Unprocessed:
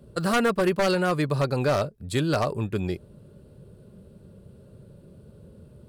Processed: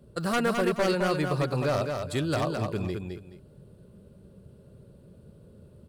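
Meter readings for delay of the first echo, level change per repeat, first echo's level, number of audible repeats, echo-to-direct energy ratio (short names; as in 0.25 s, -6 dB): 0.213 s, -12.0 dB, -5.0 dB, 2, -4.5 dB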